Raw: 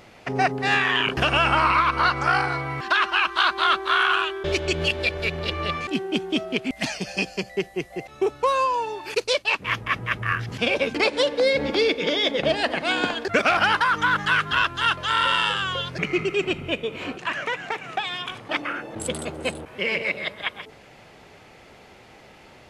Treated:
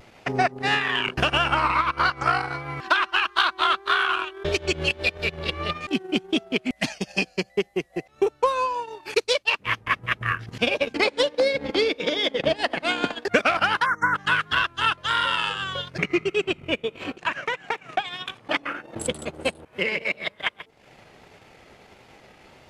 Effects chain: transient shaper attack +6 dB, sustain -12 dB; vibrato 1.6 Hz 53 cents; in parallel at -8 dB: saturation -16 dBFS, distortion -11 dB; on the sum: spectral selection erased 13.86–14.15 s, 2.2–5.4 kHz; trim -5 dB

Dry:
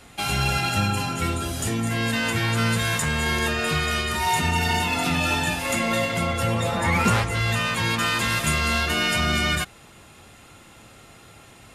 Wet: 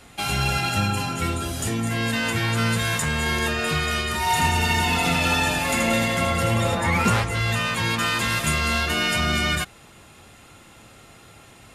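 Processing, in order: 4.22–6.75 s: reverse bouncing-ball echo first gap 80 ms, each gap 1.25×, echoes 5

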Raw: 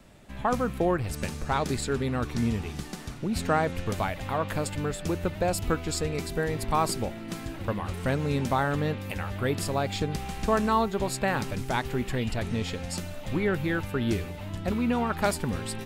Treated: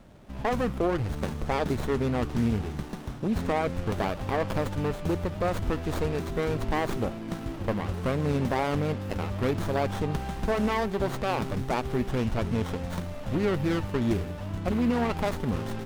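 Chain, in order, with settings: peak limiter -18 dBFS, peak gain reduction 7 dB; sliding maximum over 17 samples; trim +2.5 dB

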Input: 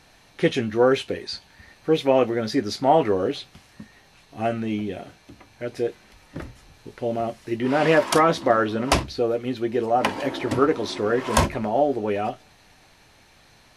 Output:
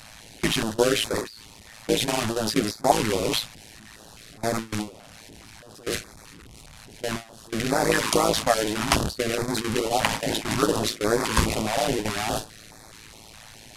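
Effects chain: one-bit delta coder 64 kbps, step -16.5 dBFS; harmonic-percussive split percussive +4 dB; gate with hold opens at -11 dBFS; AM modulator 110 Hz, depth 85%; step-sequenced notch 4.8 Hz 370–2900 Hz

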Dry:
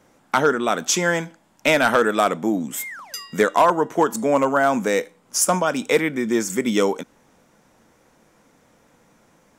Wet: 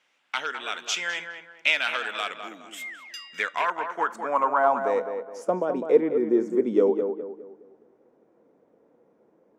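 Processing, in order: band-pass sweep 2.8 kHz -> 410 Hz, 3.25–5.59 s; tape echo 207 ms, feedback 40%, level -6 dB, low-pass 1.7 kHz; trim +2 dB

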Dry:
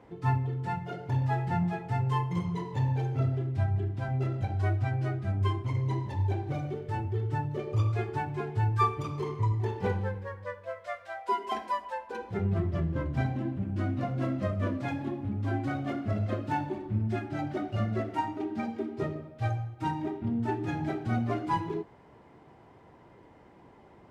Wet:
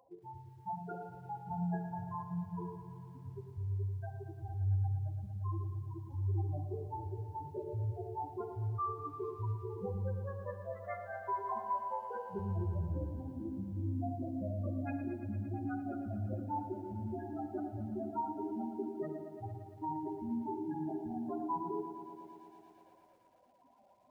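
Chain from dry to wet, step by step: local Wiener filter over 9 samples; spectral gate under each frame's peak -10 dB strong; peak limiter -25 dBFS, peak gain reduction 7.5 dB; dynamic bell 160 Hz, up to -3 dB, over -59 dBFS, Q 1.6; spectral noise reduction 20 dB; treble shelf 2.7 kHz +6 dB; on a send at -9.5 dB: reverberation RT60 0.90 s, pre-delay 42 ms; on the sum: bit-crushed delay 114 ms, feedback 80%, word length 11-bit, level -11 dB; trim -4.5 dB

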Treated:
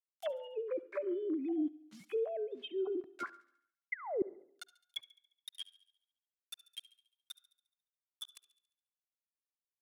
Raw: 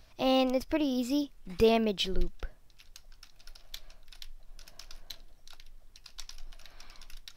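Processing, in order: formants replaced by sine waves; peaking EQ 660 Hz +5 dB 0.85 oct; spectral noise reduction 18 dB; bit crusher 10-bit; tempo 0.75×; gain riding within 4 dB 0.5 s; tilt EQ +3.5 dB/octave; painted sound fall, 3.92–4.22 s, 350–2200 Hz -18 dBFS; reverse; compression 8:1, threshold -38 dBFS, peak gain reduction 24 dB; reverse; low-pass that closes with the level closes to 430 Hz, closed at -38 dBFS; feedback echo behind a high-pass 70 ms, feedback 55%, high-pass 2.4 kHz, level -17 dB; on a send at -20 dB: reverberation RT60 0.70 s, pre-delay 46 ms; on the sum: trim +7.5 dB

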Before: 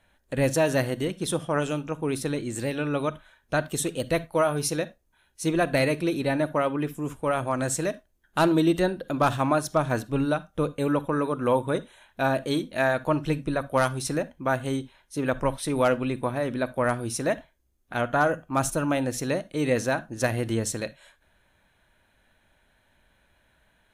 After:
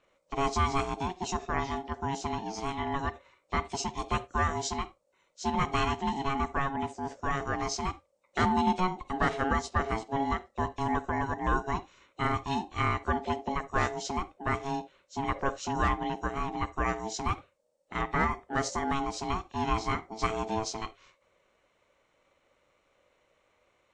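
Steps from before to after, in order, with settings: knee-point frequency compression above 2.9 kHz 1.5:1; ring modulator 550 Hz; trim -2 dB

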